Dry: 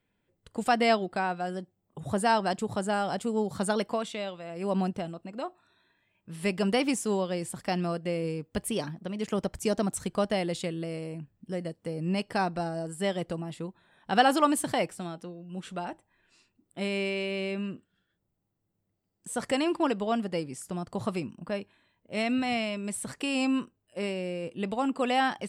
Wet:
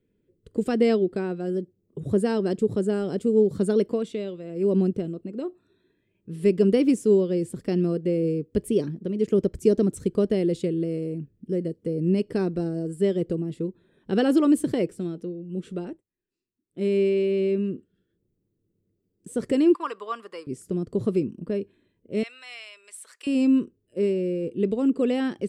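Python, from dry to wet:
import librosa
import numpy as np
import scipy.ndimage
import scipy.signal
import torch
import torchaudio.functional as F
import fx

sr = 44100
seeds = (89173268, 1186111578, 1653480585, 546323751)

y = fx.highpass_res(x, sr, hz=1100.0, q=7.9, at=(19.74, 20.47))
y = fx.highpass(y, sr, hz=980.0, slope=24, at=(22.23, 23.27))
y = fx.edit(y, sr, fx.fade_down_up(start_s=15.79, length_s=1.13, db=-23.0, fade_s=0.23, curve='qsin'), tone=tone)
y = fx.low_shelf_res(y, sr, hz=570.0, db=11.0, q=3.0)
y = F.gain(torch.from_numpy(y), -6.0).numpy()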